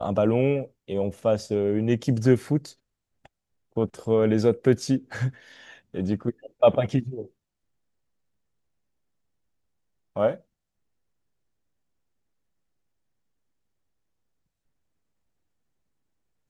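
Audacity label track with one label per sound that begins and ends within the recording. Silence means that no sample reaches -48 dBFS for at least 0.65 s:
10.160000	10.400000	sound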